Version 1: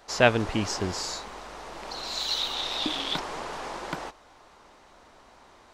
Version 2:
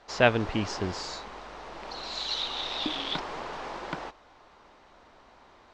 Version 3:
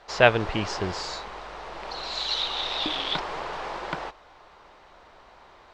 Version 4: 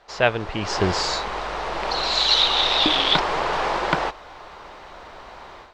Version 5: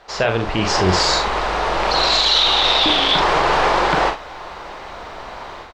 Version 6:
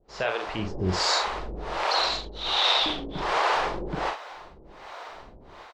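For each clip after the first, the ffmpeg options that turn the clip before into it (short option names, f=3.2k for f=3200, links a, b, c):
-af "lowpass=4.8k,volume=-1.5dB"
-af "equalizer=f=100:t=o:w=0.67:g=-3,equalizer=f=250:t=o:w=0.67:g=-8,equalizer=f=6.3k:t=o:w=0.67:g=-3,volume=4.5dB"
-af "dynaudnorm=f=200:g=3:m=13dB,volume=-2dB"
-filter_complex "[0:a]alimiter=limit=-14.5dB:level=0:latency=1:release=20,asplit=2[a][b];[b]aecho=0:1:43|76:0.473|0.141[c];[a][c]amix=inputs=2:normalize=0,volume=7dB"
-filter_complex "[0:a]acrossover=split=410[a][b];[a]aeval=exprs='val(0)*(1-1/2+1/2*cos(2*PI*1.3*n/s))':c=same[c];[b]aeval=exprs='val(0)*(1-1/2-1/2*cos(2*PI*1.3*n/s))':c=same[d];[c][d]amix=inputs=2:normalize=0,volume=-5.5dB"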